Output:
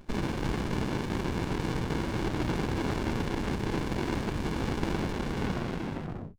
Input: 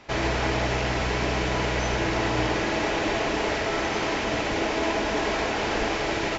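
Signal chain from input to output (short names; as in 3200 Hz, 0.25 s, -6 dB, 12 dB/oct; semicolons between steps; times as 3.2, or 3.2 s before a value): tape stop at the end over 1.45 s; speaker cabinet 230–3200 Hz, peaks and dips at 280 Hz -9 dB, 480 Hz -10 dB, 870 Hz -6 dB, 1300 Hz +5 dB, 2200 Hz +6 dB; running maximum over 65 samples; gain +1.5 dB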